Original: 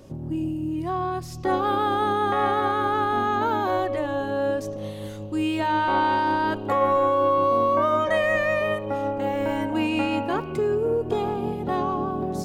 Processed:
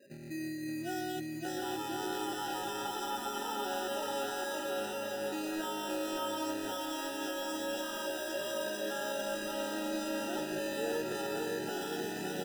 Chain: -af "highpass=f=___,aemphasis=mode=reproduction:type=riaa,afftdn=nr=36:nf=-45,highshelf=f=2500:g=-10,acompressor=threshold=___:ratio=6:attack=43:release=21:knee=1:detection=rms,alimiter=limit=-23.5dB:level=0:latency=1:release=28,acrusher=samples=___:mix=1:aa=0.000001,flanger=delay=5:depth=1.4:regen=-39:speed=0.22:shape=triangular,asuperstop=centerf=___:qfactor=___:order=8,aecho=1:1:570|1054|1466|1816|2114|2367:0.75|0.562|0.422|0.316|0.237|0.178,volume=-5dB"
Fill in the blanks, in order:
420, -30dB, 20, 1100, 3.9